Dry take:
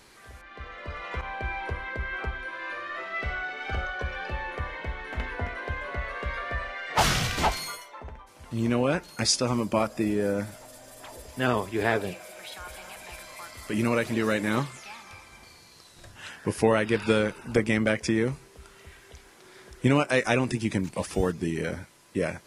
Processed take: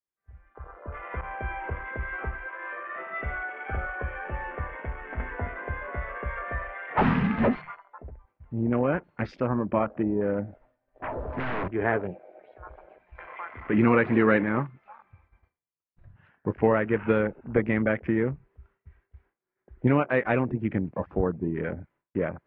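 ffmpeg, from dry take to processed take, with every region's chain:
ffmpeg -i in.wav -filter_complex "[0:a]asettb=1/sr,asplit=3[link_01][link_02][link_03];[link_01]atrim=end=7.014[link_04];[link_02]atrim=start=7.01:end=7.55,asetpts=PTS-STARTPTS,afade=type=in:duration=0.004:curve=qsin,afade=type=out:start_time=0.536:duration=0.004:curve=qsin,equalizer=frequency=81:width_type=o:width=1.3:gain=10,afreqshift=-300[link_05];[link_03]atrim=start=7.546[link_06];[link_04][link_05]acrossfade=duration=0.004:curve1=hsin:curve2=qsin[link_07];[link_07][link_06]acrossfade=duration=0.004:curve1=qsin:curve2=hsin,asettb=1/sr,asplit=3[link_08][link_09][link_10];[link_08]atrim=end=11.024[link_11];[link_09]atrim=start=11.02:end=11.68,asetpts=PTS-STARTPTS,afade=type=in:duration=0.004:curve=qsin,afade=type=out:start_time=0.656:duration=0.004:curve=qsin,aeval=exprs='(tanh(28.2*val(0)+0.65)-tanh(0.65))/28.2':channel_layout=same,aeval=exprs='0.0562*sin(PI/2*4.47*val(0)/0.0562)':channel_layout=same[link_12];[link_10]atrim=start=11.676[link_13];[link_11][link_12]acrossfade=duration=0.004:curve1=hsin:curve2=qsin[link_14];[link_14][link_13]acrossfade=duration=0.004:curve1=qsin:curve2=hsin,asettb=1/sr,asplit=3[link_15][link_16][link_17];[link_15]atrim=end=13.154[link_18];[link_16]atrim=start=13.15:end=14.44,asetpts=PTS-STARTPTS,afade=type=in:duration=0.004:curve=qsin,afade=type=out:start_time=1.286:duration=0.004:curve=qsin,lowshelf=frequency=91:gain=-6.5,bandreject=frequency=600:width=6.4,acontrast=66[link_19];[link_17]atrim=start=14.436[link_20];[link_18][link_19]acrossfade=duration=0.004:curve1=hsin:curve2=qsin[link_21];[link_21][link_20]acrossfade=duration=0.004:curve1=qsin:curve2=hsin,afwtdn=0.0141,lowpass=frequency=2100:width=0.5412,lowpass=frequency=2100:width=1.3066,agate=range=-33dB:threshold=-56dB:ratio=3:detection=peak" out.wav

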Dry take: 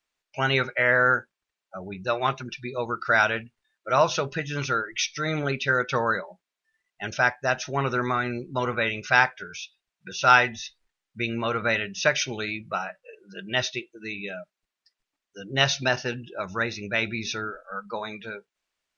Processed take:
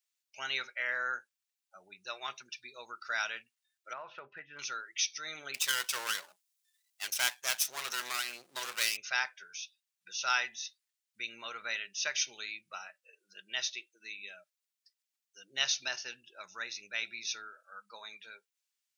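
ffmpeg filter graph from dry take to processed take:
ffmpeg -i in.wav -filter_complex "[0:a]asettb=1/sr,asplit=3[link_01][link_02][link_03];[link_01]atrim=end=3.934[link_04];[link_02]atrim=start=3.93:end=4.59,asetpts=PTS-STARTPTS,afade=type=in:duration=0.004:curve=qsin,afade=type=out:start_time=0.656:duration=0.004:curve=qsin,lowpass=frequency=2000:width=0.5412,lowpass=frequency=2000:width=1.3066,acompressor=threshold=-22dB:ratio=4:attack=3.2:release=140:knee=1:detection=peak[link_05];[link_03]atrim=start=4.586[link_06];[link_04][link_05]acrossfade=duration=0.004:curve1=hsin:curve2=qsin[link_07];[link_07][link_06]acrossfade=duration=0.004:curve1=qsin:curve2=hsin,asettb=1/sr,asplit=3[link_08][link_09][link_10];[link_08]atrim=end=5.544[link_11];[link_09]atrim=start=5.54:end=8.97,asetpts=PTS-STARTPTS,afade=type=in:duration=0.004:curve=qsin,afade=type=out:start_time=3.426:duration=0.004:curve=qsin,aeval=exprs='max(val(0),0)':channel_layout=same,highshelf=frequency=3400:gain=7,acontrast=50[link_12];[link_10]atrim=start=8.966[link_13];[link_11][link_12]acrossfade=duration=0.004:curve1=hsin:curve2=qsin[link_14];[link_14][link_13]acrossfade=duration=0.004:curve1=qsin:curve2=hsin,highpass=100,aderivative" out.wav

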